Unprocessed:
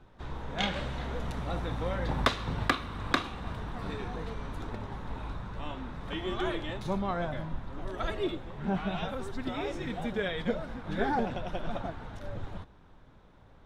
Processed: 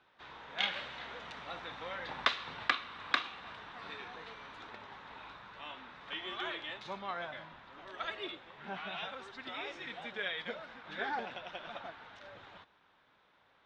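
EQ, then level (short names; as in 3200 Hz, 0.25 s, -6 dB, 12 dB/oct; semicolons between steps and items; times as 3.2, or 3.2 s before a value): band-pass 3000 Hz, Q 0.76; air absorption 98 m; +2.5 dB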